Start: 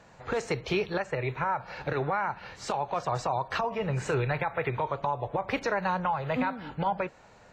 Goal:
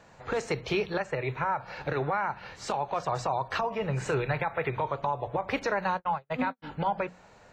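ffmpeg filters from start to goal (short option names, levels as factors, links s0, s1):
-filter_complex "[0:a]bandreject=f=60:t=h:w=6,bandreject=f=120:t=h:w=6,bandreject=f=180:t=h:w=6,bandreject=f=240:t=h:w=6,asplit=3[s0][s1][s2];[s0]afade=t=out:st=5.91:d=0.02[s3];[s1]agate=range=0.00282:threshold=0.0398:ratio=16:detection=peak,afade=t=in:st=5.91:d=0.02,afade=t=out:st=6.62:d=0.02[s4];[s2]afade=t=in:st=6.62:d=0.02[s5];[s3][s4][s5]amix=inputs=3:normalize=0"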